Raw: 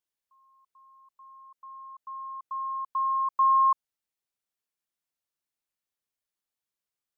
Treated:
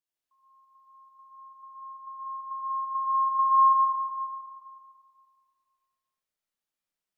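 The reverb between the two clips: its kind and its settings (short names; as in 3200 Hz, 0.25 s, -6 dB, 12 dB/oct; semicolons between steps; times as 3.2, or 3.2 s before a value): digital reverb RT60 2.1 s, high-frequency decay 0.65×, pre-delay 40 ms, DRR -6.5 dB; gain -6 dB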